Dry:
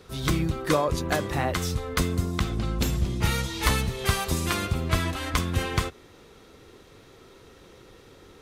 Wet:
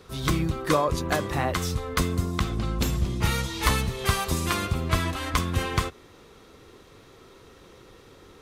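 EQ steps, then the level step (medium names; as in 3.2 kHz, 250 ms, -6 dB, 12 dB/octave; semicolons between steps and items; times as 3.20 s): peaking EQ 1.1 kHz +4 dB 0.29 oct; 0.0 dB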